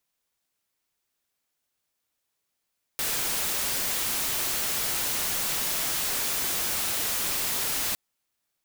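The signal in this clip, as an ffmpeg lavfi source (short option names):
-f lavfi -i "anoisesrc=c=white:a=0.0689:d=4.96:r=44100:seed=1"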